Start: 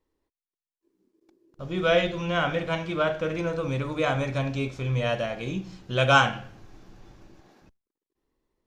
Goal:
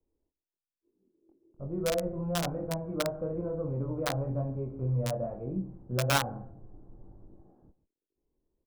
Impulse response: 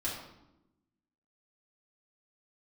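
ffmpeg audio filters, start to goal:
-filter_complex "[0:a]aecho=1:1:140:0.141,acrossover=split=1000|2100[link_01][link_02][link_03];[link_01]acompressor=threshold=-24dB:ratio=4[link_04];[link_02]acompressor=threshold=-32dB:ratio=4[link_05];[link_03]acompressor=threshold=-39dB:ratio=4[link_06];[link_04][link_05][link_06]amix=inputs=3:normalize=0,acrossover=split=120|840[link_07][link_08][link_09];[link_08]flanger=delay=19.5:depth=5.3:speed=1.1[link_10];[link_09]acrusher=bits=3:mix=0:aa=0.000001[link_11];[link_07][link_10][link_11]amix=inputs=3:normalize=0"

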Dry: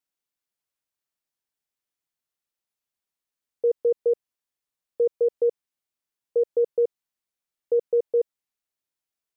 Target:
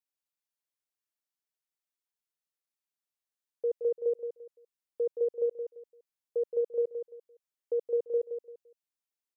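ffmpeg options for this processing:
ffmpeg -i in.wav -filter_complex "[0:a]bass=frequency=250:gain=-5,treble=frequency=4000:gain=2,asplit=2[link_01][link_02];[link_02]aecho=0:1:171|342|513:0.398|0.107|0.029[link_03];[link_01][link_03]amix=inputs=2:normalize=0,volume=-8dB" out.wav

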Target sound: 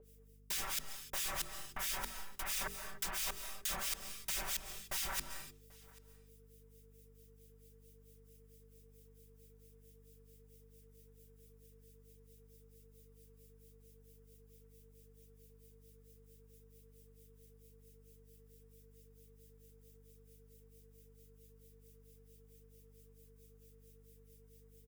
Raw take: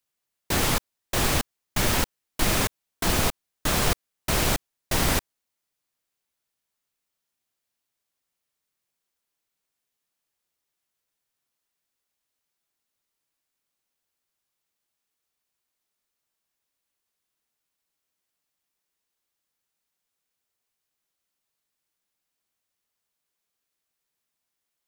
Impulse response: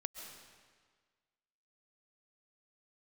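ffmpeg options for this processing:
-filter_complex "[0:a]equalizer=frequency=210:width_type=o:width=2.9:gain=-9.5,aeval=exprs='val(0)+0.000708*sin(2*PI*450*n/s)':channel_layout=same,highshelf=frequency=7700:gain=10.5,bandreject=frequency=4200:width=12,acrossover=split=1800[link_01][link_02];[link_01]aeval=exprs='val(0)*(1-1/2+1/2*cos(2*PI*4.5*n/s))':channel_layout=same[link_03];[link_02]aeval=exprs='val(0)*(1-1/2-1/2*cos(2*PI*4.5*n/s))':channel_layout=same[link_04];[link_03][link_04]amix=inputs=2:normalize=0,bandreject=frequency=50:width_type=h:width=6,bandreject=frequency=100:width_type=h:width=6,bandreject=frequency=150:width_type=h:width=6,bandreject=frequency=200:width_type=h:width=6,bandreject=frequency=250:width_type=h:width=6,bandreject=frequency=300:width_type=h:width=6,bandreject=frequency=350:width_type=h:width=6,bandreject=frequency=400:width_type=h:width=6,bandreject=frequency=450:width_type=h:width=6,aecho=1:1:5.2:0.83,areverse,acompressor=threshold=-35dB:ratio=6,areverse,aeval=exprs='val(0)+0.000355*(sin(2*PI*50*n/s)+sin(2*PI*2*50*n/s)/2+sin(2*PI*3*50*n/s)/3+sin(2*PI*4*50*n/s)/4+sin(2*PI*5*50*n/s)/5)':channel_layout=same,asplit=2[link_05][link_06];[1:a]atrim=start_sample=2205,afade=type=out:start_time=0.36:duration=0.01,atrim=end_sample=16317[link_07];[link_06][link_07]afir=irnorm=-1:irlink=0,volume=2dB[link_08];[link_05][link_08]amix=inputs=2:normalize=0,acrossover=split=790|7700[link_09][link_10][link_11];[link_09]acompressor=threshold=-47dB:ratio=4[link_12];[link_10]acompressor=threshold=-41dB:ratio=4[link_13];[link_11]acompressor=threshold=-43dB:ratio=4[link_14];[link_12][link_13][link_14]amix=inputs=3:normalize=0,aecho=1:1:788:0.0631,volume=1dB"

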